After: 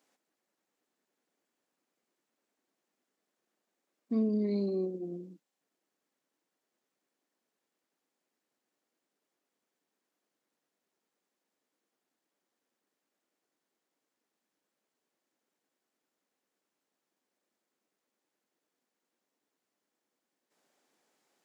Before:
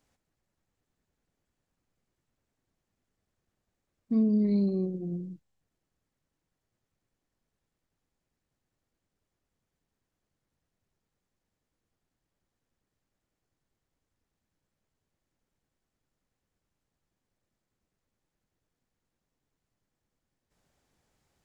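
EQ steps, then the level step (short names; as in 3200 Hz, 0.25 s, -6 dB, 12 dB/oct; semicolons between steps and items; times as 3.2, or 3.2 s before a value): HPF 250 Hz 24 dB/oct; +1.0 dB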